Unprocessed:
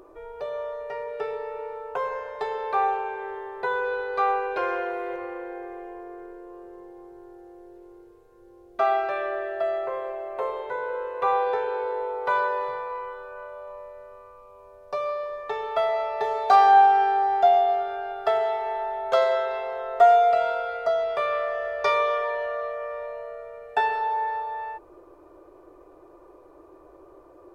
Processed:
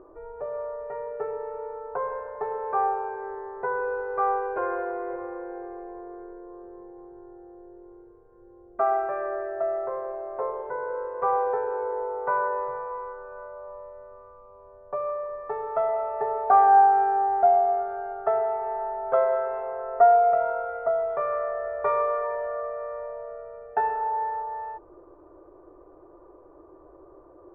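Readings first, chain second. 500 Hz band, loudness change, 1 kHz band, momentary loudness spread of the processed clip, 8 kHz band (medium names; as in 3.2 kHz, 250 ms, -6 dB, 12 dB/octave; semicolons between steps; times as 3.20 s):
-1.0 dB, -1.0 dB, -1.0 dB, 20 LU, no reading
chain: low-pass 1.5 kHz 24 dB/octave; bass shelf 330 Hz +3 dB; trim -1.5 dB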